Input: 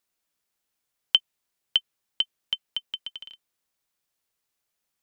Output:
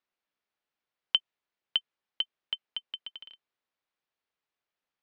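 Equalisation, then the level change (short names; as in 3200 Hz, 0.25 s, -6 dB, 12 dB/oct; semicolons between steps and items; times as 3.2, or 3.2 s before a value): air absorption 230 m; low shelf 190 Hz -10.5 dB; -1.0 dB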